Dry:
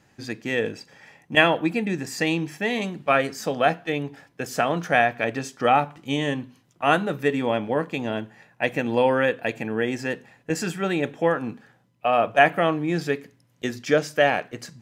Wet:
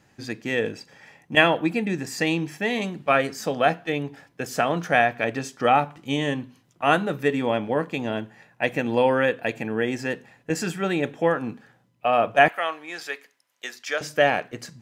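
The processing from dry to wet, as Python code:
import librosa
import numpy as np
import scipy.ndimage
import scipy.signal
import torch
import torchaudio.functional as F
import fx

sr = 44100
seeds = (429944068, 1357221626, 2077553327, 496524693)

y = fx.highpass(x, sr, hz=890.0, slope=12, at=(12.48, 14.01))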